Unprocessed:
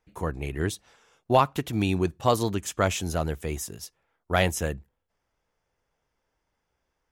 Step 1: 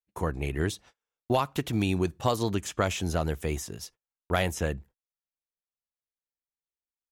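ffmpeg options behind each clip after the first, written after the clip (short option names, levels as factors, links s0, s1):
-filter_complex "[0:a]acrossover=split=3000|6400[s0][s1][s2];[s0]acompressor=threshold=0.0631:ratio=4[s3];[s1]acompressor=threshold=0.01:ratio=4[s4];[s2]acompressor=threshold=0.00501:ratio=4[s5];[s3][s4][s5]amix=inputs=3:normalize=0,agate=range=0.0224:threshold=0.00282:ratio=16:detection=peak,volume=1.19"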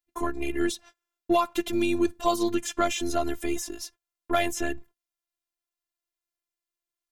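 -filter_complex "[0:a]afftfilt=real='hypot(re,im)*cos(PI*b)':imag='0':win_size=512:overlap=0.75,asplit=2[s0][s1];[s1]asoftclip=type=tanh:threshold=0.0376,volume=0.562[s2];[s0][s2]amix=inputs=2:normalize=0,volume=1.5"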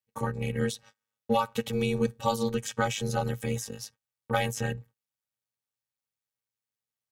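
-af "aeval=exprs='val(0)*sin(2*PI*120*n/s)':c=same"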